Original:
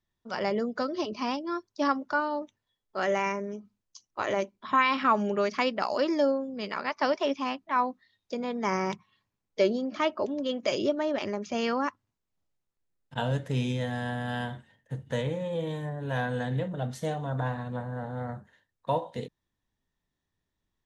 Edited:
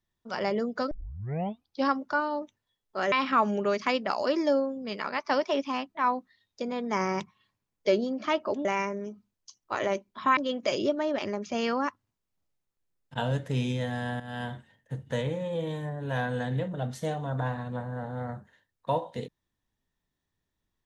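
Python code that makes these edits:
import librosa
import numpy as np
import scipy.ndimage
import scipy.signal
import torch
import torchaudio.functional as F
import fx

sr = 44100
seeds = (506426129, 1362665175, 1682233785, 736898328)

y = fx.edit(x, sr, fx.tape_start(start_s=0.91, length_s=0.98),
    fx.move(start_s=3.12, length_s=1.72, to_s=10.37),
    fx.fade_in_from(start_s=14.2, length_s=0.29, floor_db=-13.0), tone=tone)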